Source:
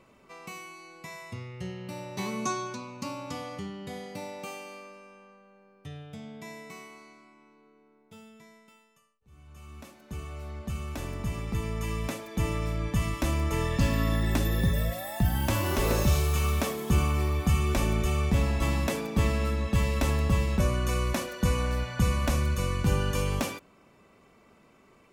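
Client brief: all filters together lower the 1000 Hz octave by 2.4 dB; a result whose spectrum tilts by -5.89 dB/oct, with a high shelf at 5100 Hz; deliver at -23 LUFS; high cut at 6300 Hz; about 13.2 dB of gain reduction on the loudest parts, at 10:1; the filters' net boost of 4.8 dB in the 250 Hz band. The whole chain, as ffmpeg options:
-af "lowpass=6.3k,equalizer=f=250:t=o:g=6.5,equalizer=f=1k:t=o:g=-3.5,highshelf=f=5.1k:g=6,acompressor=threshold=-31dB:ratio=10,volume=14.5dB"

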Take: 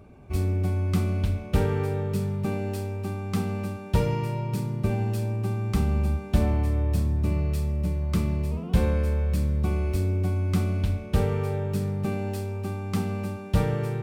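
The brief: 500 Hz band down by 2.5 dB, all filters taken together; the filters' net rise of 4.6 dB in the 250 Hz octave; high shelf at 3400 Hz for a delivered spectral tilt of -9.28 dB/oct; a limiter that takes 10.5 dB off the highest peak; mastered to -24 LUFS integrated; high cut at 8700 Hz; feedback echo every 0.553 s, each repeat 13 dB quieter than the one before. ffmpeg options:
-af "lowpass=8.7k,equalizer=f=250:t=o:g=8,equalizer=f=500:t=o:g=-6.5,highshelf=f=3.4k:g=-8.5,alimiter=limit=-17.5dB:level=0:latency=1,aecho=1:1:553|1106|1659:0.224|0.0493|0.0108,volume=3dB"

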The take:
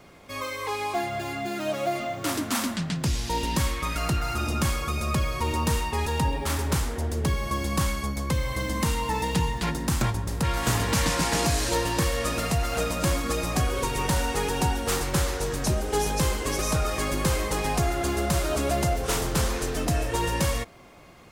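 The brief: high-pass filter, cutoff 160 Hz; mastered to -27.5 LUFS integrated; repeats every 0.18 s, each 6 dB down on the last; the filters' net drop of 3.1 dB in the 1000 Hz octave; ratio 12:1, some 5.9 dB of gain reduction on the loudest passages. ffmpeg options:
-af "highpass=160,equalizer=f=1k:t=o:g=-4,acompressor=threshold=-28dB:ratio=12,aecho=1:1:180|360|540|720|900|1080:0.501|0.251|0.125|0.0626|0.0313|0.0157,volume=3.5dB"

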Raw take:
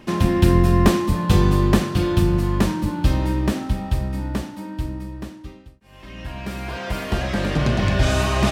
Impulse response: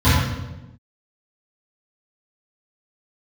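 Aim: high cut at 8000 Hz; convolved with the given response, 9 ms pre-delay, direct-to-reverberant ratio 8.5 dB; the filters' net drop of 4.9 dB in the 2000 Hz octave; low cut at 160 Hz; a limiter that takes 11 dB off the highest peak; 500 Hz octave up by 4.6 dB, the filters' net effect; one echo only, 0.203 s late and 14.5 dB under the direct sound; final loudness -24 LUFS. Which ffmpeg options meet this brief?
-filter_complex "[0:a]highpass=160,lowpass=8k,equalizer=f=500:t=o:g=7.5,equalizer=f=2k:t=o:g=-7,alimiter=limit=-12.5dB:level=0:latency=1,aecho=1:1:203:0.188,asplit=2[a][b];[1:a]atrim=start_sample=2205,adelay=9[c];[b][c]afir=irnorm=-1:irlink=0,volume=-32dB[d];[a][d]amix=inputs=2:normalize=0,volume=-5dB"

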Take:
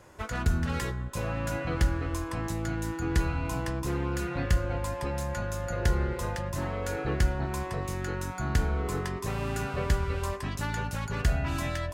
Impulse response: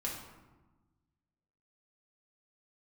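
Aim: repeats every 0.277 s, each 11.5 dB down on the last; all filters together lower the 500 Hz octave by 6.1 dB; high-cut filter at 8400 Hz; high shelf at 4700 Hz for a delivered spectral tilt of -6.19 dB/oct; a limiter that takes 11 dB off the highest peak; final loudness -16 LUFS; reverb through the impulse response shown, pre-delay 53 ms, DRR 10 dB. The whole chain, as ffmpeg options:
-filter_complex "[0:a]lowpass=8.4k,equalizer=f=500:t=o:g=-8,highshelf=f=4.7k:g=-6,alimiter=level_in=1.5dB:limit=-24dB:level=0:latency=1,volume=-1.5dB,aecho=1:1:277|554|831:0.266|0.0718|0.0194,asplit=2[a][b];[1:a]atrim=start_sample=2205,adelay=53[c];[b][c]afir=irnorm=-1:irlink=0,volume=-12dB[d];[a][d]amix=inputs=2:normalize=0,volume=18.5dB"

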